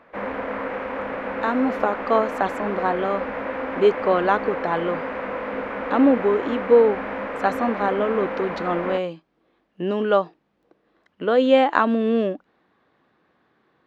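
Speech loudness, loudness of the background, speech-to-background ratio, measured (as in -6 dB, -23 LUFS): -22.0 LUFS, -29.0 LUFS, 7.0 dB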